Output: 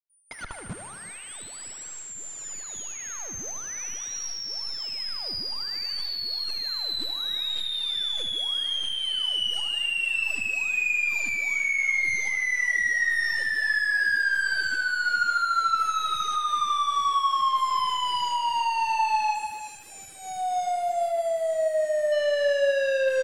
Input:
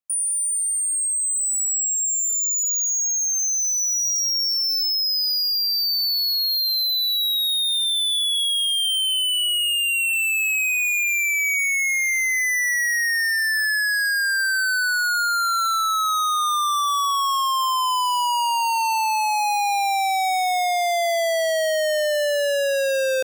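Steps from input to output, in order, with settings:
fade in at the beginning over 5.46 s
high-shelf EQ 3,000 Hz +11 dB
comb filter 3.7 ms, depth 44%
in parallel at −11 dB: comparator with hysteresis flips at −33.5 dBFS
on the sum: harmonic generator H 4 −20 dB, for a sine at −3.5 dBFS
time-frequency box erased 0:19.35–0:22.12, 740–6,400 Hz
soft clipping −19.5 dBFS, distortion −8 dB
head-to-tape spacing loss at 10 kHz 22 dB
on a send: feedback echo with a band-pass in the loop 77 ms, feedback 75%, band-pass 2,000 Hz, level −5 dB
on the sum: reverb whose tail is shaped and stops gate 400 ms flat, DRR 10 dB
level −1.5 dB

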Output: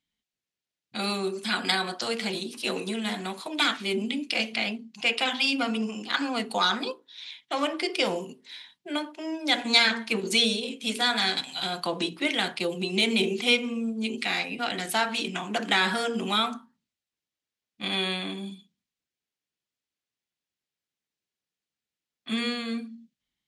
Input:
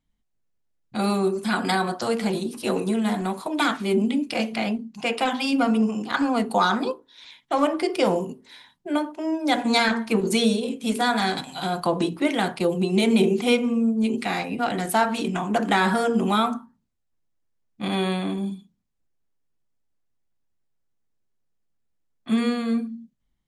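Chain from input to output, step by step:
meter weighting curve D
level −6.5 dB

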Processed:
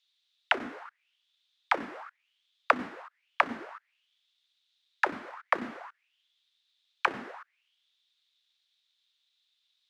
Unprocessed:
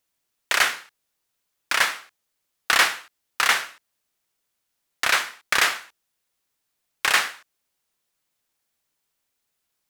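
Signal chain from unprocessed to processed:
each half-wave held at its own peak
mid-hump overdrive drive 19 dB, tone 5,400 Hz, clips at −3.5 dBFS
envelope filter 240–3,700 Hz, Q 7.5, down, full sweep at −8.5 dBFS

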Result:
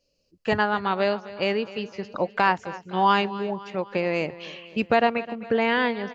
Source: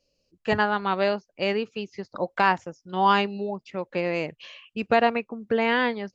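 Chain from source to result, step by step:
camcorder AGC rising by 5 dB per second
on a send: repeating echo 257 ms, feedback 54%, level −17 dB

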